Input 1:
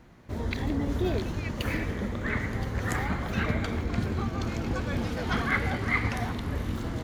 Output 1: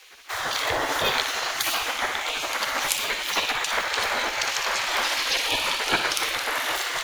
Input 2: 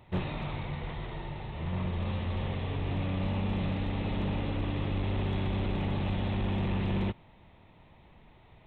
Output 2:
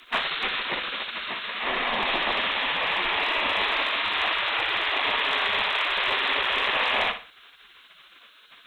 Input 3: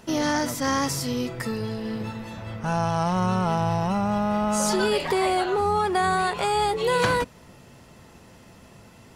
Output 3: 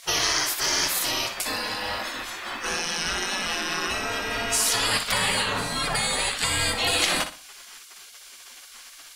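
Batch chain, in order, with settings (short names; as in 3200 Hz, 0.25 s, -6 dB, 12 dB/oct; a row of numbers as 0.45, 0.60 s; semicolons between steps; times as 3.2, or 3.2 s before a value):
HPF 110 Hz 6 dB/oct; spectral gate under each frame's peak -20 dB weak; low shelf 240 Hz -4 dB; compressor 1.5:1, threshold -43 dBFS; frequency shift -55 Hz; flutter echo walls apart 10.3 m, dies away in 0.36 s; match loudness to -24 LUFS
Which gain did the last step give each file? +20.5, +21.5, +15.5 dB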